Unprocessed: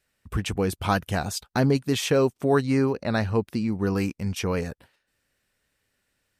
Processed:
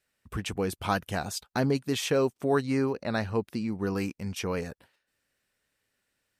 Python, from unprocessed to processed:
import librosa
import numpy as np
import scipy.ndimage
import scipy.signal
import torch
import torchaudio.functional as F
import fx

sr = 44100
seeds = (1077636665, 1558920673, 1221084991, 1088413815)

y = fx.low_shelf(x, sr, hz=120.0, db=-7.0)
y = y * librosa.db_to_amplitude(-3.5)